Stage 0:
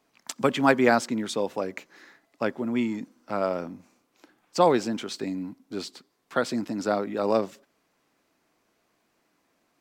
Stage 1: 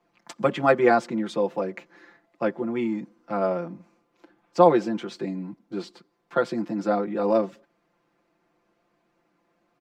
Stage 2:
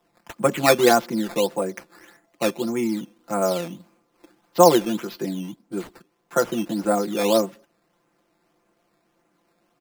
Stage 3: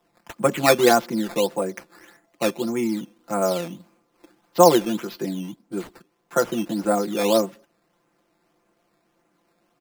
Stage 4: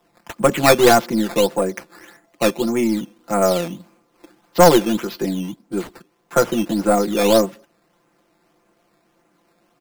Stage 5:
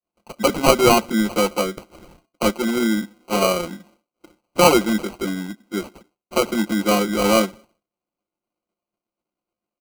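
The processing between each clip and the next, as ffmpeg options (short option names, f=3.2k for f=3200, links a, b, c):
-filter_complex "[0:a]lowpass=f=1.5k:p=1,aecho=1:1:5.8:0.93,acrossover=split=120[a][b];[a]acompressor=threshold=-54dB:ratio=6[c];[c][b]amix=inputs=2:normalize=0"
-af "acrusher=samples=10:mix=1:aa=0.000001:lfo=1:lforange=10:lforate=1.7,volume=2.5dB"
-af anull
-af "aeval=exprs='(tanh(3.16*val(0)+0.35)-tanh(0.35))/3.16':c=same,volume=6.5dB"
-af "highpass=f=200:w=0.5412,highpass=f=200:w=1.3066,equalizer=f=210:t=q:w=4:g=7,equalizer=f=1.2k:t=q:w=4:g=7,equalizer=f=2k:t=q:w=4:g=5,lowpass=f=3.7k:w=0.5412,lowpass=f=3.7k:w=1.3066,agate=range=-33dB:threshold=-45dB:ratio=3:detection=peak,acrusher=samples=25:mix=1:aa=0.000001,volume=-3dB"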